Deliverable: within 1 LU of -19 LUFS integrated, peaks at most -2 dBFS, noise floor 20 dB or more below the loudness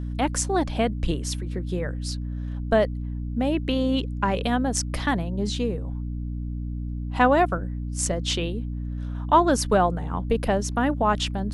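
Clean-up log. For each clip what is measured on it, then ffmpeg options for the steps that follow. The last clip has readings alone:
hum 60 Hz; harmonics up to 300 Hz; hum level -27 dBFS; loudness -25.0 LUFS; peak -6.5 dBFS; loudness target -19.0 LUFS
-> -af "bandreject=f=60:t=h:w=4,bandreject=f=120:t=h:w=4,bandreject=f=180:t=h:w=4,bandreject=f=240:t=h:w=4,bandreject=f=300:t=h:w=4"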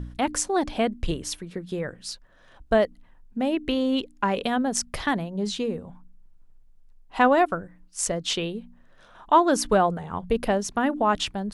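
hum none; loudness -25.0 LUFS; peak -7.0 dBFS; loudness target -19.0 LUFS
-> -af "volume=6dB,alimiter=limit=-2dB:level=0:latency=1"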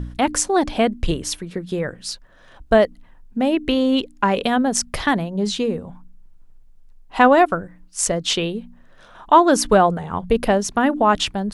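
loudness -19.0 LUFS; peak -2.0 dBFS; noise floor -48 dBFS

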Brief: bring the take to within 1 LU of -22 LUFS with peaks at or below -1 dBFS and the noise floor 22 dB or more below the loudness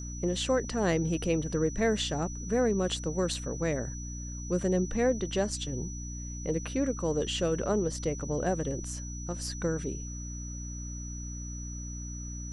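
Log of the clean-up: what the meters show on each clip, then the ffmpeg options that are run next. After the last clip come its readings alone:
hum 60 Hz; harmonics up to 300 Hz; hum level -37 dBFS; steady tone 5900 Hz; tone level -43 dBFS; loudness -31.5 LUFS; peak -14.0 dBFS; loudness target -22.0 LUFS
-> -af "bandreject=f=60:t=h:w=6,bandreject=f=120:t=h:w=6,bandreject=f=180:t=h:w=6,bandreject=f=240:t=h:w=6,bandreject=f=300:t=h:w=6"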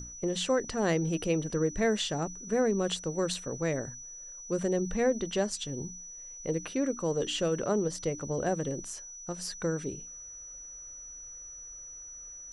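hum none; steady tone 5900 Hz; tone level -43 dBFS
-> -af "bandreject=f=5.9k:w=30"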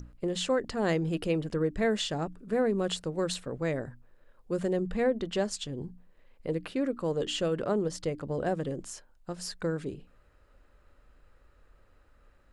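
steady tone none; loudness -31.5 LUFS; peak -15.5 dBFS; loudness target -22.0 LUFS
-> -af "volume=9.5dB"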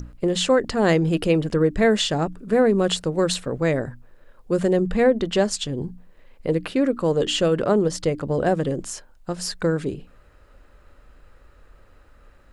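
loudness -22.0 LUFS; peak -6.0 dBFS; noise floor -53 dBFS

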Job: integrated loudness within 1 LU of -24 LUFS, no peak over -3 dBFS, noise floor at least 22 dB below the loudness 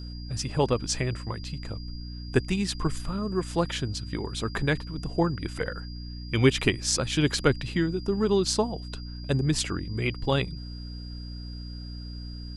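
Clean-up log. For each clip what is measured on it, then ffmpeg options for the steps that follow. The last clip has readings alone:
hum 60 Hz; harmonics up to 300 Hz; hum level -35 dBFS; steady tone 4800 Hz; tone level -46 dBFS; loudness -28.0 LUFS; peak -5.5 dBFS; loudness target -24.0 LUFS
-> -af "bandreject=f=60:t=h:w=4,bandreject=f=120:t=h:w=4,bandreject=f=180:t=h:w=4,bandreject=f=240:t=h:w=4,bandreject=f=300:t=h:w=4"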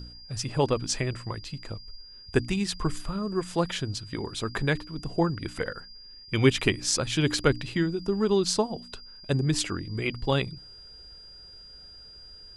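hum none; steady tone 4800 Hz; tone level -46 dBFS
-> -af "bandreject=f=4.8k:w=30"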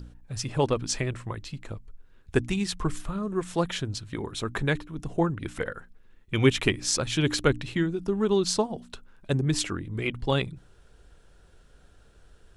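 steady tone none; loudness -28.0 LUFS; peak -6.0 dBFS; loudness target -24.0 LUFS
-> -af "volume=4dB,alimiter=limit=-3dB:level=0:latency=1"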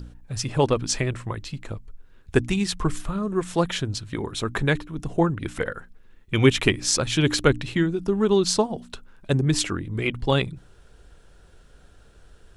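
loudness -24.0 LUFS; peak -3.0 dBFS; noise floor -53 dBFS

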